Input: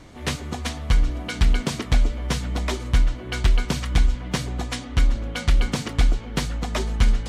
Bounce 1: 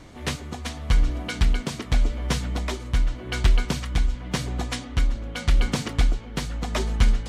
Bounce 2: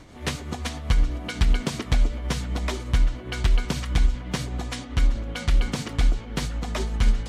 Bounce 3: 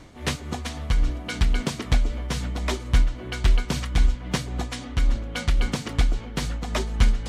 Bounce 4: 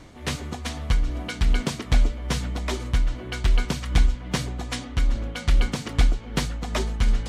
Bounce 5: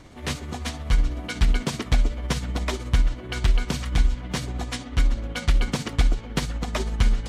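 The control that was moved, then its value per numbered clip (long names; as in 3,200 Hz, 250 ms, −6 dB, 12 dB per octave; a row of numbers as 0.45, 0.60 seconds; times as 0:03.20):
amplitude tremolo, speed: 0.87, 7.9, 3.7, 2.5, 16 Hertz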